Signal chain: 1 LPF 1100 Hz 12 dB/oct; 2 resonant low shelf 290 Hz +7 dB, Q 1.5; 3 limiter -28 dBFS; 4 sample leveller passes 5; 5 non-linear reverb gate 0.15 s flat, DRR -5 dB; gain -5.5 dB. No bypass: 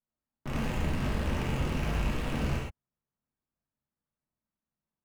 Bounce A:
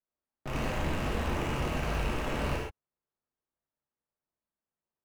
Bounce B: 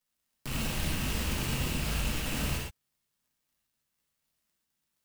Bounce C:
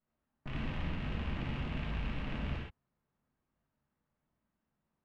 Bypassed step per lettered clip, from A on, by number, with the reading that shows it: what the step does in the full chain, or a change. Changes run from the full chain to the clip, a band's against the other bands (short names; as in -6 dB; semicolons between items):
2, 125 Hz band -4.5 dB; 1, 8 kHz band +14.0 dB; 4, 500 Hz band -4.0 dB